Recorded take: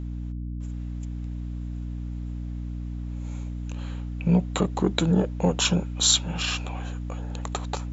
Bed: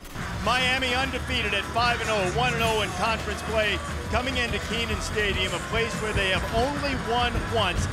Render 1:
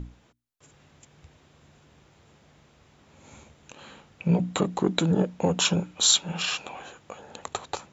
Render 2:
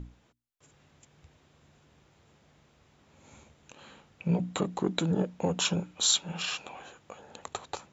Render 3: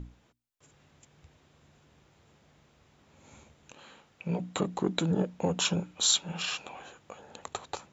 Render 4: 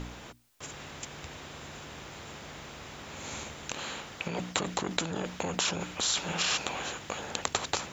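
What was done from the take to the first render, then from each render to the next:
mains-hum notches 60/120/180/240/300 Hz
level −5 dB
0:03.80–0:04.56: low-shelf EQ 230 Hz −8 dB
in parallel at +2 dB: compressor whose output falls as the input rises −34 dBFS, ratio −0.5; on the sum: every bin compressed towards the loudest bin 2 to 1

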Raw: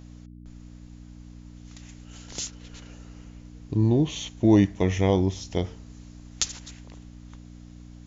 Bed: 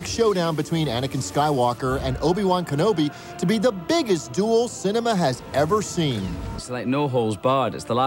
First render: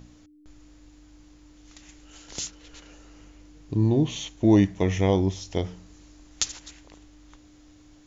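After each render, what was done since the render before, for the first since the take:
hum removal 60 Hz, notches 4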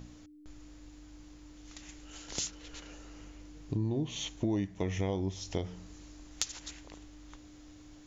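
downward compressor 4 to 1, threshold −31 dBFS, peak gain reduction 14.5 dB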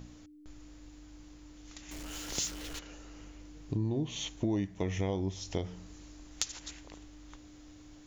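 0:01.91–0:02.79: converter with a step at zero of −40.5 dBFS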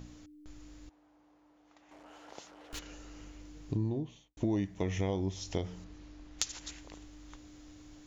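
0:00.89–0:02.73: resonant band-pass 770 Hz, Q 1.6
0:03.76–0:04.37: fade out and dull
0:05.84–0:06.39: high-frequency loss of the air 150 metres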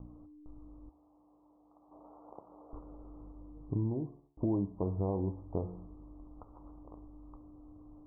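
Butterworth low-pass 1,200 Hz 96 dB per octave
hum removal 70.94 Hz, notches 36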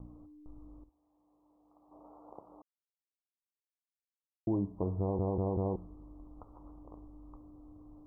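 0:00.84–0:02.06: fade in, from −14 dB
0:02.62–0:04.47: silence
0:05.00: stutter in place 0.19 s, 4 plays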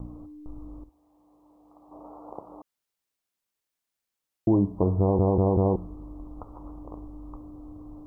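level +10.5 dB

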